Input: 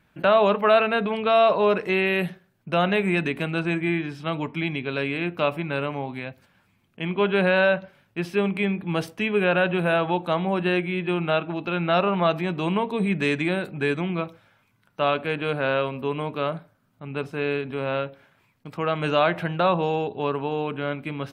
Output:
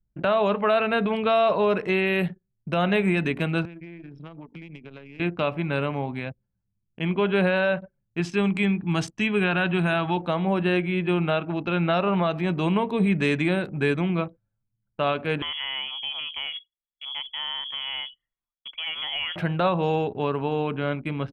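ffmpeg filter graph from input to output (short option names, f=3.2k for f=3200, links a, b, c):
-filter_complex "[0:a]asettb=1/sr,asplit=3[a][b][c];[a]atrim=end=3.654[d];[b]atrim=start=3.65:end=5.2,asetpts=PTS-STARTPTS,afade=t=in:d=0.004:c=qsin,afade=t=out:st=1.546:d=0.004:c=qsin,aeval=exprs='if(lt(val(0),0),0.447*val(0),val(0))':c=same,acompressor=threshold=-36dB:ratio=10:attack=3.2:release=140:knee=1:detection=peak,highpass=f=120:w=0.5412,highpass=f=120:w=1.3066[e];[c]atrim=start=5.196[f];[d][e]acrossfade=d=0.004:c1=hsin:c2=qsin[g];[g][f]acrossfade=d=0.004:c1=qsin:c2=hsin,asettb=1/sr,asplit=3[h][i][j];[h]atrim=end=8.204[k];[i]atrim=start=8.2:end=10.17,asetpts=PTS-STARTPTS,afade=t=in:d=0.004:c=qsin,afade=t=out:st=1.966:d=0.004:c=qsin,lowpass=f=7.2k:t=q:w=3.3,equalizer=f=510:t=o:w=0.4:g=-12.5[l];[j]atrim=start=10.166[m];[k][l]acrossfade=d=0.004:c1=hsin:c2=qsin[n];[n][m]acrossfade=d=0.004:c1=qsin:c2=hsin,asettb=1/sr,asplit=3[o][p][q];[o]atrim=end=15.424[r];[p]atrim=start=15.42:end=19.36,asetpts=PTS-STARTPTS,afade=t=in:d=0.004:c=qsin,afade=t=out:st=3.936:d=0.004:c=qsin,acompressor=threshold=-28dB:ratio=3:attack=3.2:release=140:knee=1:detection=peak,lowpass=f=3k:t=q:w=0.5098,lowpass=f=3k:t=q:w=0.6013,lowpass=f=3k:t=q:w=0.9,lowpass=f=3k:t=q:w=2.563,afreqshift=-3500[s];[q]atrim=start=19.356[t];[r][s]acrossfade=d=0.004:c1=hsin:c2=qsin[u];[u][t]acrossfade=d=0.004:c1=qsin:c2=hsin,anlmdn=0.398,lowshelf=f=170:g=6.5,alimiter=limit=-12.5dB:level=0:latency=1:release=194"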